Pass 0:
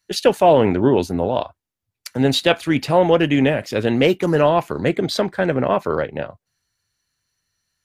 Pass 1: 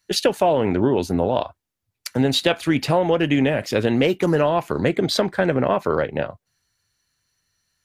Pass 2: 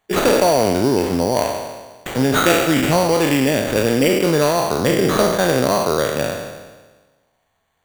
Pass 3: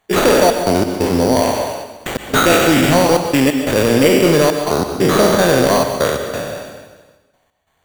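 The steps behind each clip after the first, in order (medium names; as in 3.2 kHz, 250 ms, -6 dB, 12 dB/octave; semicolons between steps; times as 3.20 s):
compression, threshold -17 dBFS, peak gain reduction 9 dB; trim +2.5 dB
spectral sustain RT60 1.31 s; sample-rate reducer 5.2 kHz, jitter 0%
trance gate "xxx.x.xx" 90 bpm -60 dB; in parallel at -7 dB: sine folder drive 8 dB, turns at -1 dBFS; on the sum: plate-style reverb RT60 0.78 s, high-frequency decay 0.95×, pre-delay 110 ms, DRR 6.5 dB; trim -4 dB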